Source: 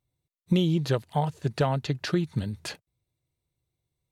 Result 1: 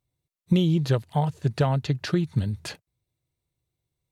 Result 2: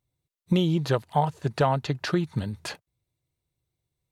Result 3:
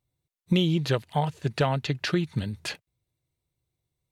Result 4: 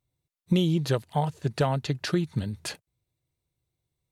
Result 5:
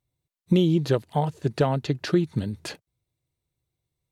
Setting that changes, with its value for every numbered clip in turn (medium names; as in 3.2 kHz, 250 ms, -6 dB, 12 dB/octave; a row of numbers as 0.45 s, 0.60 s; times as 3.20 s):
dynamic bell, frequency: 100 Hz, 970 Hz, 2.5 kHz, 9.8 kHz, 330 Hz